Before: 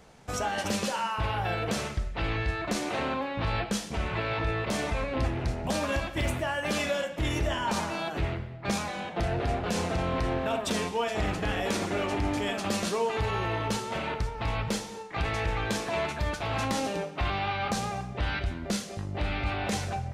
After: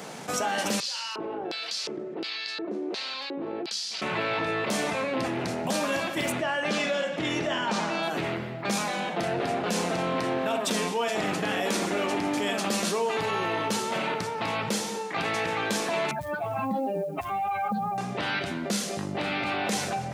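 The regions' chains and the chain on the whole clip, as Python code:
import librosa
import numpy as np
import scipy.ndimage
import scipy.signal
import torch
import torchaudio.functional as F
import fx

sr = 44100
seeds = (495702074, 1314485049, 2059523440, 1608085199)

y = fx.chain(x, sr, fx.highpass(hz=120.0, slope=12),
    fx.filter_lfo_bandpass(shape='square', hz=1.4, low_hz=360.0, high_hz=4600.0, q=4.7),
    fx.env_flatten(amount_pct=50), at=(0.8, 4.02))
y = fx.chain(y, sr, fx.lowpass(hz=5400.0, slope=12),
    fx.notch(hz=970.0, q=19.0), at=(6.32, 8.03))
y = fx.chain(y, sr, fx.spec_expand(power=2.4),
    fx.ellip_lowpass(hz=4400.0, order=4, stop_db=40),
    fx.quant_companded(bits=8), at=(16.11, 17.98))
y = scipy.signal.sosfilt(scipy.signal.butter(4, 160.0, 'highpass', fs=sr, output='sos'), y)
y = fx.high_shelf(y, sr, hz=6400.0, db=5.0)
y = fx.env_flatten(y, sr, amount_pct=50)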